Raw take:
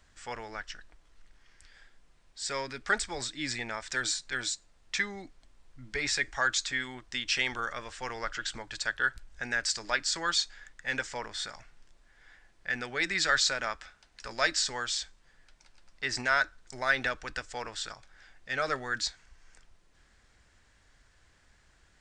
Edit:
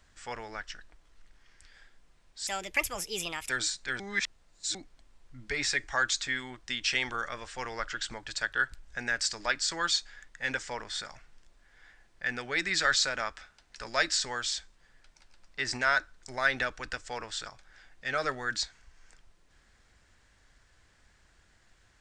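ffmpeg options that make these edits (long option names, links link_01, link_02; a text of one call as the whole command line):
ffmpeg -i in.wav -filter_complex "[0:a]asplit=5[link_01][link_02][link_03][link_04][link_05];[link_01]atrim=end=2.474[link_06];[link_02]atrim=start=2.47:end=3.94,asetpts=PTS-STARTPTS,asetrate=63063,aresample=44100[link_07];[link_03]atrim=start=3.936:end=4.442[link_08];[link_04]atrim=start=4.438:end=5.192,asetpts=PTS-STARTPTS,areverse[link_09];[link_05]atrim=start=5.188[link_10];[link_06][link_07]acrossfade=duration=0.004:curve1=hsin:curve2=hsin[link_11];[link_11][link_08]acrossfade=duration=0.004:curve1=hsin:curve2=hsin[link_12];[link_12][link_09]acrossfade=duration=0.004:curve1=hsin:curve2=hsin[link_13];[link_13][link_10]acrossfade=duration=0.004:curve1=hsin:curve2=hsin" out.wav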